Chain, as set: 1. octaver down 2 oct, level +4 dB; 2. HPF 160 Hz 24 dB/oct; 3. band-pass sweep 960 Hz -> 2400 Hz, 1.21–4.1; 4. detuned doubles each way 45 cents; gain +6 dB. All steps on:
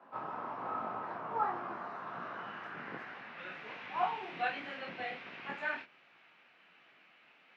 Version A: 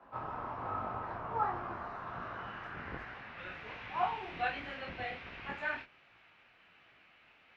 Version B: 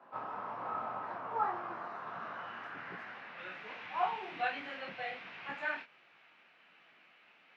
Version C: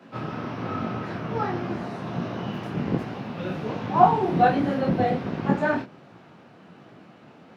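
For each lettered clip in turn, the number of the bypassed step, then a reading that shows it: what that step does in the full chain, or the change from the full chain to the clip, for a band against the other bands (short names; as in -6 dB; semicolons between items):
2, 125 Hz band +8.0 dB; 1, 250 Hz band -3.0 dB; 3, 125 Hz band +15.5 dB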